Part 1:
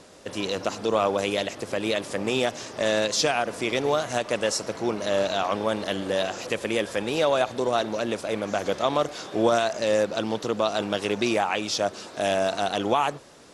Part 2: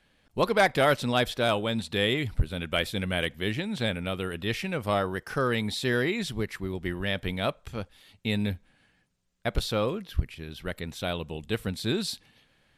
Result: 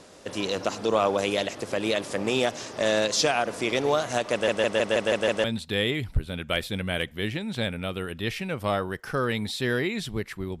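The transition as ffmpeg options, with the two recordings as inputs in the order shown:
ffmpeg -i cue0.wav -i cue1.wav -filter_complex "[0:a]apad=whole_dur=10.6,atrim=end=10.6,asplit=7[link_01][link_02][link_03][link_04][link_05][link_06][link_07];[link_01]atrim=end=4.482[link_08];[link_02]atrim=start=4.318:end=4.482[link_09];[link_03]atrim=start=4.318:end=4.482[link_10];[link_04]atrim=start=4.318:end=4.482[link_11];[link_05]atrim=start=4.318:end=4.482[link_12];[link_06]atrim=start=4.318:end=4.482[link_13];[link_07]atrim=start=4.318:end=4.482[link_14];[1:a]atrim=start=1.668:end=6.83[link_15];[link_08][link_09]acrossfade=duration=0.004:curve1=hsin:curve2=hsin[link_16];[link_16][link_10]acrossfade=duration=0.004:curve1=hsin:curve2=hsin[link_17];[link_17][link_11]acrossfade=duration=0.004:curve1=hsin:curve2=hsin[link_18];[link_18][link_12]acrossfade=duration=0.004:curve1=hsin:curve2=hsin[link_19];[link_19][link_13]acrossfade=duration=0.004:curve1=hsin:curve2=hsin[link_20];[link_20][link_14]acrossfade=duration=0.004:curve1=hsin:curve2=hsin[link_21];[link_21][link_15]acrossfade=duration=0.004:curve1=hsin:curve2=hsin" out.wav

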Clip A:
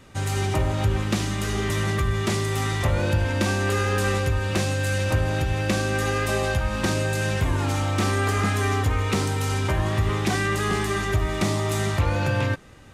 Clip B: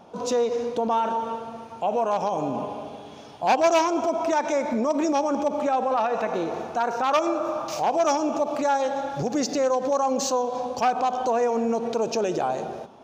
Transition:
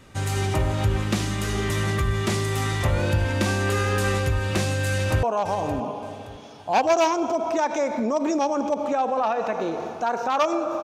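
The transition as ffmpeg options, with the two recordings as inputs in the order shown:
ffmpeg -i cue0.wav -i cue1.wav -filter_complex "[0:a]apad=whole_dur=10.83,atrim=end=10.83,atrim=end=5.232[link_01];[1:a]atrim=start=1.968:end=7.57[link_02];[link_01][link_02]acrossfade=duration=0.004:curve1=hsin:curve2=hsin,asplit=2[link_03][link_04];[link_04]afade=type=in:start_time=4.88:duration=0.01,afade=type=out:start_time=5.23:duration=0.01,aecho=0:1:570|1140|1710|2280:0.237137|0.0829981|0.0290493|0.0101673[link_05];[link_03][link_05]amix=inputs=2:normalize=0" out.wav

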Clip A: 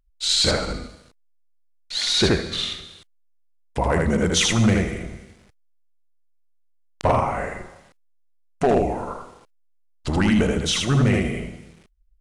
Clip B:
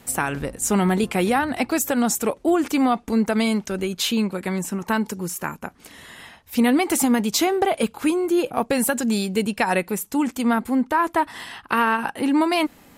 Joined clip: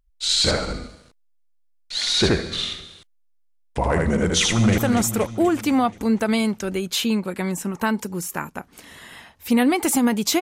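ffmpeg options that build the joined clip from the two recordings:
ffmpeg -i cue0.wav -i cue1.wav -filter_complex "[0:a]apad=whole_dur=10.41,atrim=end=10.41,atrim=end=4.782[link_01];[1:a]atrim=start=1.848:end=7.48[link_02];[link_01][link_02]acrossfade=duration=0.004:curve1=hsin:curve2=hsin,asplit=2[link_03][link_04];[link_04]afade=type=in:start_time=4.48:duration=0.01,afade=type=out:start_time=4.78:duration=0.01,aecho=0:1:240|480|720|960|1200|1440|1680|1920:0.398107|0.238864|0.143319|0.0859911|0.0515947|0.0309568|0.0185741|0.0111445[link_05];[link_03][link_05]amix=inputs=2:normalize=0" out.wav

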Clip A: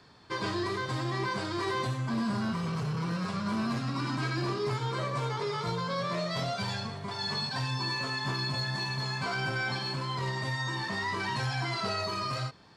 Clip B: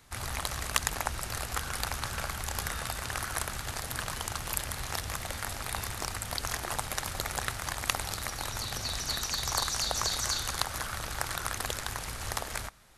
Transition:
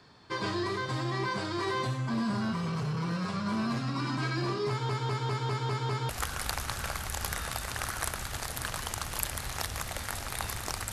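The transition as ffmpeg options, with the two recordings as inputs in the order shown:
ffmpeg -i cue0.wav -i cue1.wav -filter_complex "[0:a]apad=whole_dur=10.92,atrim=end=10.92,asplit=7[link_01][link_02][link_03][link_04][link_05][link_06][link_07];[link_01]atrim=end=4.892[link_08];[link_02]atrim=start=4.688:end=4.892[link_09];[link_03]atrim=start=4.688:end=4.892[link_10];[link_04]atrim=start=4.688:end=4.892[link_11];[link_05]atrim=start=4.688:end=4.892[link_12];[link_06]atrim=start=4.688:end=4.892[link_13];[link_07]atrim=start=4.688:end=4.892[link_14];[1:a]atrim=start=1.428:end=6.26[link_15];[link_08][link_09]acrossfade=duration=0.004:curve1=hsin:curve2=hsin[link_16];[link_16][link_10]acrossfade=duration=0.004:curve1=hsin:curve2=hsin[link_17];[link_17][link_11]acrossfade=duration=0.004:curve1=hsin:curve2=hsin[link_18];[link_18][link_12]acrossfade=duration=0.004:curve1=hsin:curve2=hsin[link_19];[link_19][link_13]acrossfade=duration=0.004:curve1=hsin:curve2=hsin[link_20];[link_20][link_14]acrossfade=duration=0.004:curve1=hsin:curve2=hsin[link_21];[link_21][link_15]acrossfade=duration=0.004:curve1=hsin:curve2=hsin" out.wav

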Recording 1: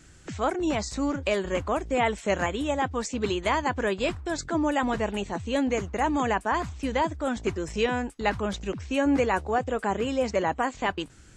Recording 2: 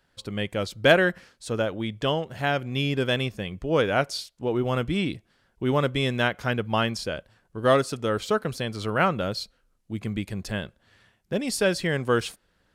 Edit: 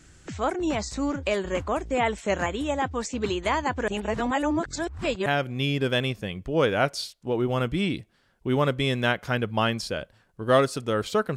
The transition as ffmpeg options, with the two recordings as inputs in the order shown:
ffmpeg -i cue0.wav -i cue1.wav -filter_complex "[0:a]apad=whole_dur=11.36,atrim=end=11.36,asplit=2[link_01][link_02];[link_01]atrim=end=3.882[link_03];[link_02]atrim=start=3.878:end=5.262,asetpts=PTS-STARTPTS,areverse[link_04];[1:a]atrim=start=2.418:end=8.52[link_05];[link_03][link_04]acrossfade=duration=0.004:curve1=hsin:curve2=hsin[link_06];[link_06][link_05]acrossfade=duration=0.004:curve1=hsin:curve2=hsin" out.wav

